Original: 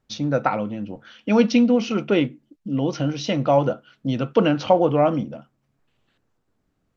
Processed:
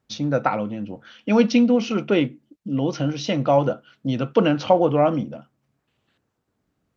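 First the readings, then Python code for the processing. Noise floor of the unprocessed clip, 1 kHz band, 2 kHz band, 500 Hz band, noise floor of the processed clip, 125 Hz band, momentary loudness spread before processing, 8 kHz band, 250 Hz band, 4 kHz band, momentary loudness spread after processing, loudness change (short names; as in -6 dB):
-72 dBFS, 0.0 dB, 0.0 dB, 0.0 dB, -76 dBFS, 0.0 dB, 12 LU, n/a, 0.0 dB, 0.0 dB, 12 LU, 0.0 dB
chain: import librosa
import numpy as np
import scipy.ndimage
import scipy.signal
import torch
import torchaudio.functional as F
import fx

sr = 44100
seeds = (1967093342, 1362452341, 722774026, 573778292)

y = scipy.signal.sosfilt(scipy.signal.butter(2, 56.0, 'highpass', fs=sr, output='sos'), x)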